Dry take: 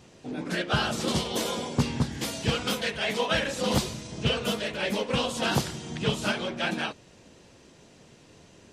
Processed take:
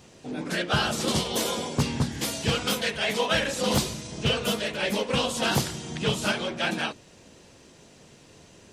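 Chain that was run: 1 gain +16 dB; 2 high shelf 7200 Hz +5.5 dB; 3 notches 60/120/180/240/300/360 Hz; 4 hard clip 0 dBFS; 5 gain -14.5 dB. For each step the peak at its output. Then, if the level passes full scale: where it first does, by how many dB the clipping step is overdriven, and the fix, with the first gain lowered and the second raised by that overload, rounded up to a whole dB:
+6.0, +6.0, +6.5, 0.0, -14.5 dBFS; step 1, 6.5 dB; step 1 +9 dB, step 5 -7.5 dB

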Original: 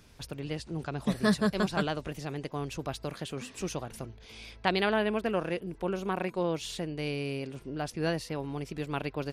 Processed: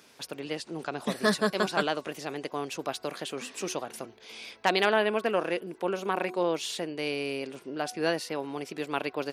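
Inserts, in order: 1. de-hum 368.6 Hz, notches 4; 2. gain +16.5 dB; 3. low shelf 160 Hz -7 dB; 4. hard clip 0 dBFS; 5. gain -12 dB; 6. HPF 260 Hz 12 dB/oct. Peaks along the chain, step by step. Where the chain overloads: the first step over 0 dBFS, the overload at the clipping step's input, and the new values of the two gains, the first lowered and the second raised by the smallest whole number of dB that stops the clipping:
-10.0, +6.5, +7.0, 0.0, -12.0, -9.0 dBFS; step 2, 7.0 dB; step 2 +9.5 dB, step 5 -5 dB

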